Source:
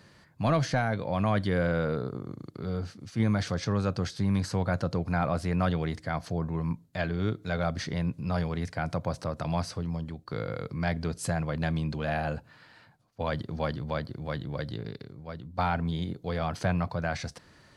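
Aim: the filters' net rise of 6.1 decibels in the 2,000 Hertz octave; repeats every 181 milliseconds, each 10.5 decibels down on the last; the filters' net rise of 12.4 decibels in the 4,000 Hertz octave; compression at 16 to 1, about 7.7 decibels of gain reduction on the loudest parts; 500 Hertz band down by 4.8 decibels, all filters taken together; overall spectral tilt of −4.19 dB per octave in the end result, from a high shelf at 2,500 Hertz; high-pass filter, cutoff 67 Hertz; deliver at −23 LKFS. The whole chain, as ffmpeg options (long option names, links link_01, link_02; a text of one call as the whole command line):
ffmpeg -i in.wav -af "highpass=67,equalizer=frequency=500:width_type=o:gain=-7,equalizer=frequency=2000:width_type=o:gain=3.5,highshelf=frequency=2500:gain=9,equalizer=frequency=4000:width_type=o:gain=6.5,acompressor=threshold=-29dB:ratio=16,aecho=1:1:181|362|543:0.299|0.0896|0.0269,volume=11dB" out.wav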